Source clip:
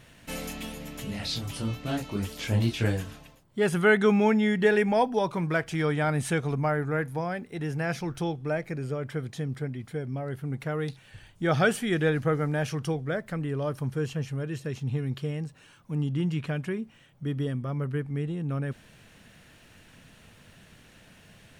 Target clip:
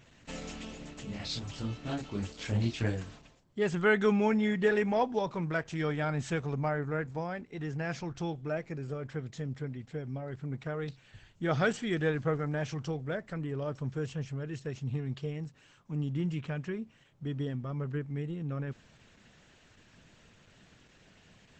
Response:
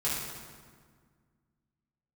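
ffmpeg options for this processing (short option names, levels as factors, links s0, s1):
-filter_complex "[0:a]asettb=1/sr,asplit=3[s0][s1][s2];[s0]atrim=end=13.674[s3];[s1]atrim=start=13.67:end=15.06,asetpts=PTS-STARTPTS,afade=t=in:d=0.004:c=qsin,afade=t=out:st=1.386:d=0.004:c=qsin,agate=range=0.0224:threshold=0.0126:ratio=3:detection=peak[s4];[s2]atrim=start=15.056[s5];[s3][s4]acrossfade=d=0.004:c1=hsin:c2=qsin[s6];[s6][s5]acrossfade=d=0.004:c1=qsin:c2=hsin,highshelf=f=12000:g=6,volume=0.596" -ar 48000 -c:a libopus -b:a 12k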